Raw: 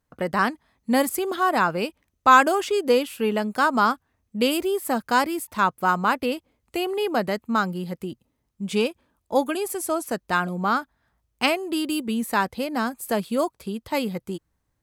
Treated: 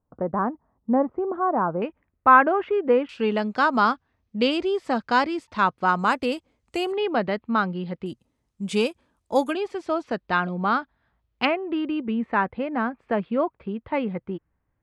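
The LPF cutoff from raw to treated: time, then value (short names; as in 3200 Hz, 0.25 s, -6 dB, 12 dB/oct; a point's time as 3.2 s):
LPF 24 dB/oct
1100 Hz
from 1.82 s 2100 Hz
from 3.09 s 5100 Hz
from 5.99 s 8700 Hz
from 6.92 s 3800 Hz
from 8.06 s 10000 Hz
from 9.53 s 4100 Hz
from 11.45 s 2400 Hz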